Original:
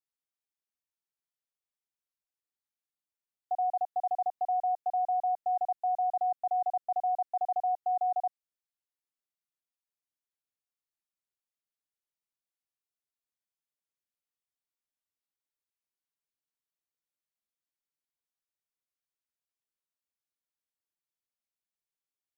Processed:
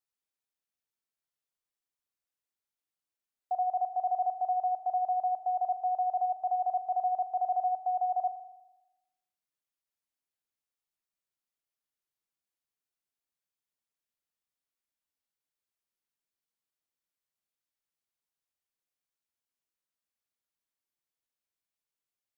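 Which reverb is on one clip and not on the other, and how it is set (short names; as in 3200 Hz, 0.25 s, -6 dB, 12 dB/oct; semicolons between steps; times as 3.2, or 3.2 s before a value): spring tank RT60 1 s, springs 40 ms, chirp 55 ms, DRR 10.5 dB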